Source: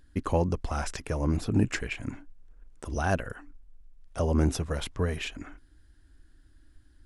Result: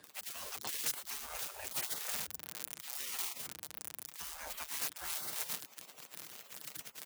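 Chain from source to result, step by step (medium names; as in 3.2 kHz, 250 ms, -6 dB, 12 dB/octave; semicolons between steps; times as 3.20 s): zero-crossing glitches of -27 dBFS; comb 6.8 ms, depth 70%; reverse; compression 10:1, threshold -33 dBFS, peak gain reduction 16 dB; reverse; spectral gate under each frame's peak -25 dB weak; frequency shift +29 Hz; trim +9.5 dB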